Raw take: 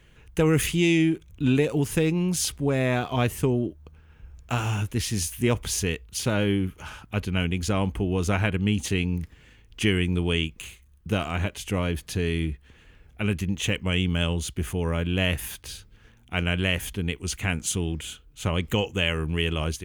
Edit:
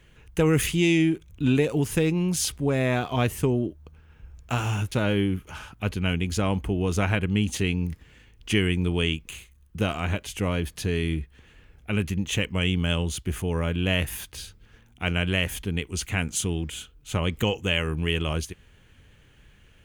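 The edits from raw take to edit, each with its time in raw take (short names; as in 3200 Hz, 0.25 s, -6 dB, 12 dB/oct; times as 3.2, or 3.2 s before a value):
4.92–6.23 cut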